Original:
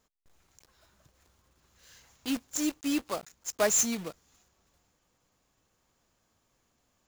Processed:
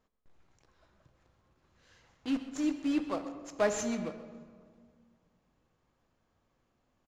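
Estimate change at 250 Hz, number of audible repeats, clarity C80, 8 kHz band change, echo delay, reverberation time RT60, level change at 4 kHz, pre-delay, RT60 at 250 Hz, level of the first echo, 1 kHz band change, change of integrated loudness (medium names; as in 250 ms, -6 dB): +0.5 dB, 1, 10.0 dB, -14.5 dB, 129 ms, 1.9 s, -8.0 dB, 3 ms, 2.4 s, -15.0 dB, -1.5 dB, -4.0 dB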